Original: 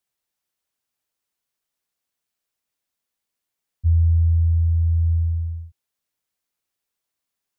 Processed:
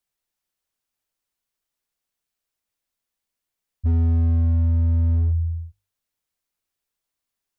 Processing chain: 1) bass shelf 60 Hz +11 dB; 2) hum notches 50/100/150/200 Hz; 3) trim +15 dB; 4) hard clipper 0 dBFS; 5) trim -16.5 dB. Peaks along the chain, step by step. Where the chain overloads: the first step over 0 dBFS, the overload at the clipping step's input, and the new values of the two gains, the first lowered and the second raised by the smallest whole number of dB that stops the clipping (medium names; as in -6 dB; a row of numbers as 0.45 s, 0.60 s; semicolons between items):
-8.0 dBFS, -8.0 dBFS, +7.0 dBFS, 0.0 dBFS, -16.5 dBFS; step 3, 7.0 dB; step 3 +8 dB, step 5 -9.5 dB